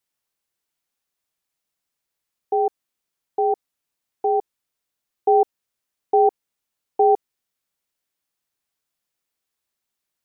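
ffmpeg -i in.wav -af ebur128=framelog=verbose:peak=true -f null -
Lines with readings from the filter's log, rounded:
Integrated loudness:
  I:         -21.8 LUFS
  Threshold: -32.2 LUFS
Loudness range:
  LRA:         6.7 LU
  Threshold: -45.5 LUFS
  LRA low:   -29.8 LUFS
  LRA high:  -23.0 LUFS
True peak:
  Peak:       -8.3 dBFS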